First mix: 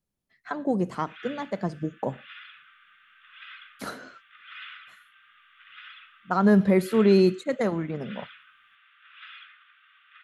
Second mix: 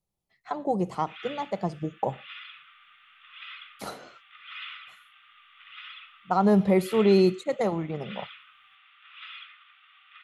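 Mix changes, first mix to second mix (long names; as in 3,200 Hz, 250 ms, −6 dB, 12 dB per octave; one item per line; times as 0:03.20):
background +4.5 dB
master: add thirty-one-band graphic EQ 250 Hz −10 dB, 800 Hz +7 dB, 1,600 Hz −12 dB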